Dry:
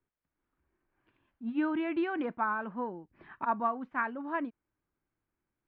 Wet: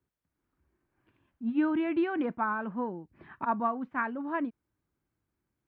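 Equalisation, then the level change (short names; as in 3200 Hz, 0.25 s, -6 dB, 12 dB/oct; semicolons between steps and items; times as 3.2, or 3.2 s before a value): HPF 52 Hz; low shelf 270 Hz +8 dB; 0.0 dB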